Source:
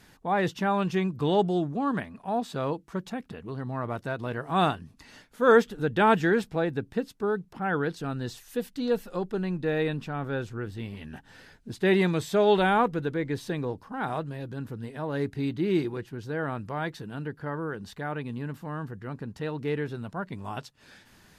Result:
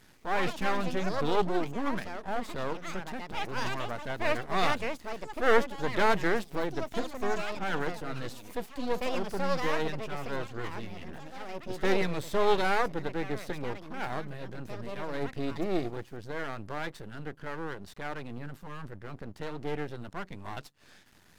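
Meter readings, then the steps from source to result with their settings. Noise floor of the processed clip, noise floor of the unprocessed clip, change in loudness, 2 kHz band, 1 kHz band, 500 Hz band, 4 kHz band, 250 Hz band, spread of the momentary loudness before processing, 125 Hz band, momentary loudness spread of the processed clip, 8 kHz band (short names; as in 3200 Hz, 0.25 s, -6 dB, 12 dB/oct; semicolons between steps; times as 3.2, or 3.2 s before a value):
-57 dBFS, -58 dBFS, -4.5 dB, -1.5 dB, -3.0 dB, -4.5 dB, 0.0 dB, -7.0 dB, 14 LU, -7.5 dB, 15 LU, +1.0 dB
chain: half-wave rectifier; echoes that change speed 0.149 s, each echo +5 st, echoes 2, each echo -6 dB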